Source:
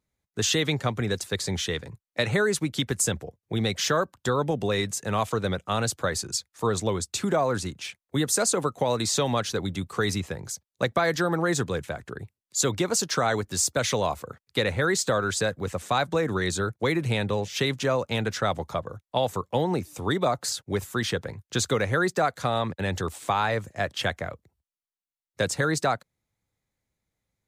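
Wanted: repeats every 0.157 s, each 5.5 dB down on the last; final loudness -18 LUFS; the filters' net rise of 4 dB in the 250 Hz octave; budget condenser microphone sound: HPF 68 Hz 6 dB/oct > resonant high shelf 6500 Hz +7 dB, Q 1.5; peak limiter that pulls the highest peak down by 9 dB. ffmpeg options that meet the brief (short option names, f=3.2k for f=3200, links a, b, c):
-af "equalizer=f=250:t=o:g=6,alimiter=limit=-18dB:level=0:latency=1,highpass=f=68:p=1,highshelf=f=6.5k:t=q:w=1.5:g=7,aecho=1:1:157|314|471|628|785|942|1099:0.531|0.281|0.149|0.079|0.0419|0.0222|0.0118,volume=8dB"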